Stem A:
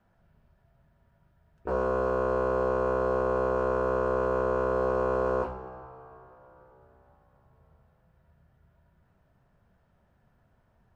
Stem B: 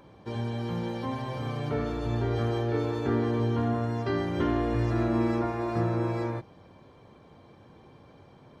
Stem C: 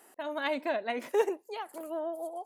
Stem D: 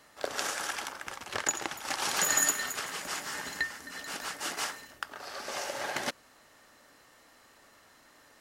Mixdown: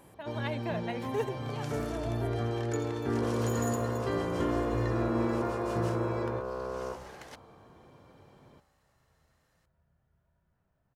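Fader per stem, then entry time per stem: -9.5, -4.0, -5.5, -16.0 dB; 1.50, 0.00, 0.00, 1.25 s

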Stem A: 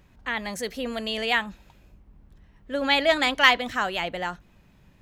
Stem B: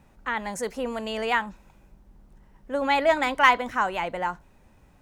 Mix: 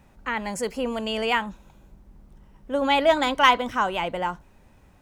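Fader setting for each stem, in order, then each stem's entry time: -8.5, +1.5 dB; 0.00, 0.00 s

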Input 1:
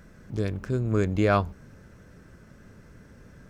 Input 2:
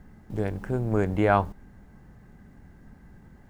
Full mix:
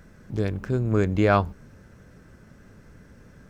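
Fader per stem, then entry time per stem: 0.0, -9.5 dB; 0.00, 0.00 s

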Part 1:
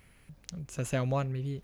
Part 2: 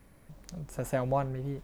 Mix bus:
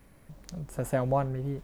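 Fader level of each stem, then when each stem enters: -13.0, +1.0 dB; 0.00, 0.00 s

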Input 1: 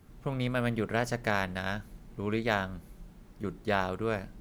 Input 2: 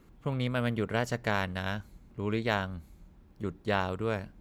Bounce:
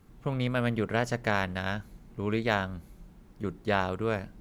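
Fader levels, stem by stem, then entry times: -3.5, -5.0 dB; 0.00, 0.00 s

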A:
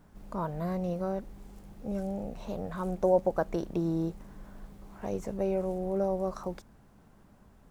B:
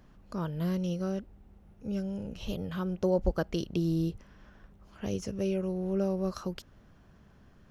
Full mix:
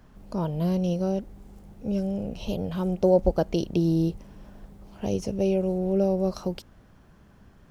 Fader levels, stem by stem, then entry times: -2.0, +2.5 dB; 0.00, 0.00 s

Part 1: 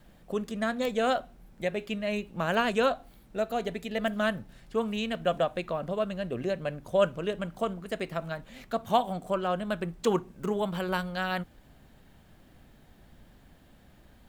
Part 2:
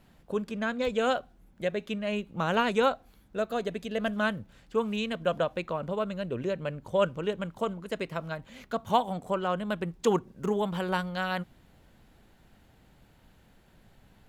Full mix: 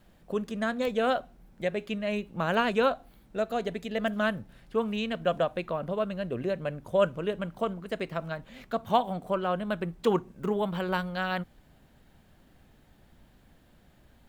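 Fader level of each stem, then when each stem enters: -3.5, -8.0 dB; 0.00, 0.00 s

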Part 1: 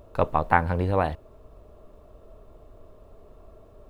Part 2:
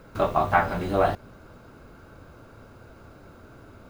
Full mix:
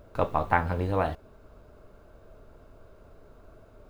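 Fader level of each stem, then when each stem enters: -3.5, -11.5 dB; 0.00, 0.00 s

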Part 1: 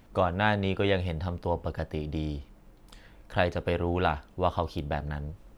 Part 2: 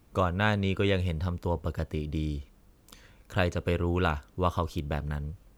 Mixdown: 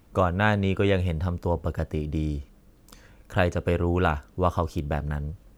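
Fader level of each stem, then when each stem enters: -6.5, +1.0 dB; 0.00, 0.00 s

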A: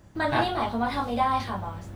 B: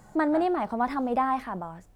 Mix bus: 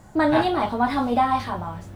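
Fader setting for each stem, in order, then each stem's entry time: +0.5, +2.5 dB; 0.00, 0.00 s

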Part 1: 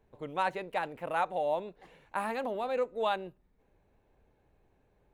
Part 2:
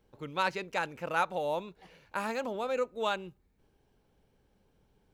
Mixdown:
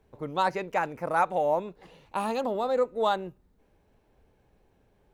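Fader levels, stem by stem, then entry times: +2.5, -2.0 dB; 0.00, 0.00 s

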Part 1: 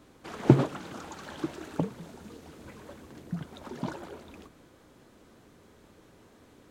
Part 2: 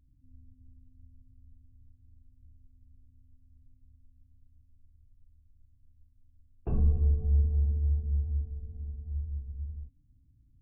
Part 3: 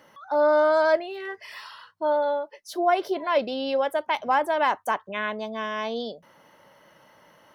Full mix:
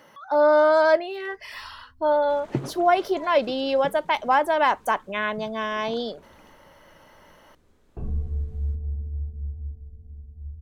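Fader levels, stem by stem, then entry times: -8.5, -3.0, +2.5 dB; 2.05, 1.30, 0.00 s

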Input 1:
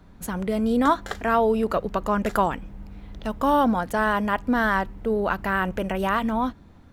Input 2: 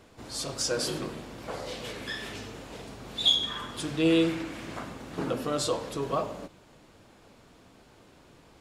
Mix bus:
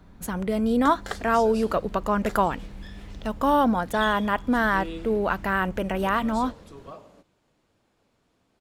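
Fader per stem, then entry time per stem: -0.5, -13.5 dB; 0.00, 0.75 s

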